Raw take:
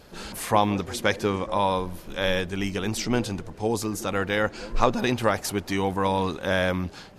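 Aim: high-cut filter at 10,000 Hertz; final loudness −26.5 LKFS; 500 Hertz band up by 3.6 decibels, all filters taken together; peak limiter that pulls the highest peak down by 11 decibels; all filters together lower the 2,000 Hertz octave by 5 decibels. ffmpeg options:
ffmpeg -i in.wav -af "lowpass=10000,equalizer=frequency=500:width_type=o:gain=4.5,equalizer=frequency=2000:width_type=o:gain=-7,volume=1dB,alimiter=limit=-14.5dB:level=0:latency=1" out.wav

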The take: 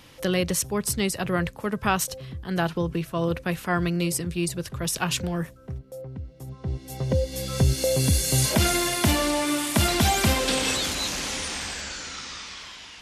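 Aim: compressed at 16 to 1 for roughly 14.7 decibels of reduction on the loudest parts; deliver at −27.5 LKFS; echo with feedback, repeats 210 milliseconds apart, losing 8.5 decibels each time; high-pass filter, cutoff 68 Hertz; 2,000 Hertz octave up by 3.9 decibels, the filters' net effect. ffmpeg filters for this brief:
ffmpeg -i in.wav -af "highpass=68,equalizer=frequency=2000:width_type=o:gain=5,acompressor=threshold=-31dB:ratio=16,aecho=1:1:210|420|630|840:0.376|0.143|0.0543|0.0206,volume=7dB" out.wav

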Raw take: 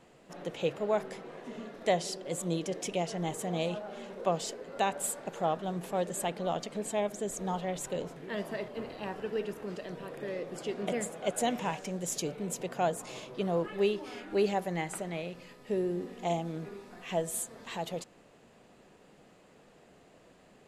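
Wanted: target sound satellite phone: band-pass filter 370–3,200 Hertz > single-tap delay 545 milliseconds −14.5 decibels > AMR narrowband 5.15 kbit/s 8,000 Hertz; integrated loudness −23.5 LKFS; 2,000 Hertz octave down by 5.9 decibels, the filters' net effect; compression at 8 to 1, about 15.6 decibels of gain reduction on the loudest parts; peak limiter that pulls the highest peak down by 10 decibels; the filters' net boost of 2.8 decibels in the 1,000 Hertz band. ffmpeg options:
ffmpeg -i in.wav -af "equalizer=frequency=1000:width_type=o:gain=6,equalizer=frequency=2000:width_type=o:gain=-8.5,acompressor=threshold=-38dB:ratio=8,alimiter=level_in=11.5dB:limit=-24dB:level=0:latency=1,volume=-11.5dB,highpass=370,lowpass=3200,aecho=1:1:545:0.188,volume=26dB" -ar 8000 -c:a libopencore_amrnb -b:a 5150 out.amr

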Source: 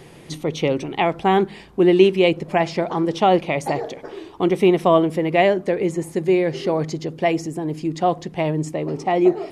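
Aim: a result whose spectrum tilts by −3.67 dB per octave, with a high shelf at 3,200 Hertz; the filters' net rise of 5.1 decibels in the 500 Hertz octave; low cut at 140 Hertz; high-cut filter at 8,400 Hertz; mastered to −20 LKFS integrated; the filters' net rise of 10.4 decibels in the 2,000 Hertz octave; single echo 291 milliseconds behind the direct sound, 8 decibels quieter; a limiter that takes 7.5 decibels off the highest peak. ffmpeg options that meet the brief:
ffmpeg -i in.wav -af "highpass=140,lowpass=8400,equalizer=frequency=500:width_type=o:gain=6.5,equalizer=frequency=2000:width_type=o:gain=9,highshelf=frequency=3200:gain=8,alimiter=limit=-4dB:level=0:latency=1,aecho=1:1:291:0.398,volume=-3.5dB" out.wav

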